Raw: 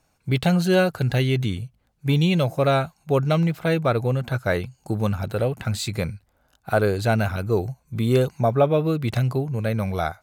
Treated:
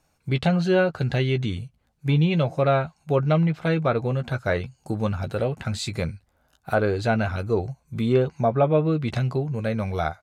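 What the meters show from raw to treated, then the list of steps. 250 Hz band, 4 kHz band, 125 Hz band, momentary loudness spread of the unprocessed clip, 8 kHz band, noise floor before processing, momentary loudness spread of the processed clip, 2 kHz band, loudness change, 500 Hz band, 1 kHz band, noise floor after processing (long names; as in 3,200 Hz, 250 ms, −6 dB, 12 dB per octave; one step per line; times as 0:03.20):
−1.0 dB, −3.5 dB, −1.5 dB, 7 LU, −5.0 dB, −67 dBFS, 8 LU, −1.5 dB, −1.5 dB, −1.0 dB, −1.0 dB, −68 dBFS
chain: double-tracking delay 13 ms −10 dB
treble cut that deepens with the level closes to 2,600 Hz, closed at −14 dBFS
level −1.5 dB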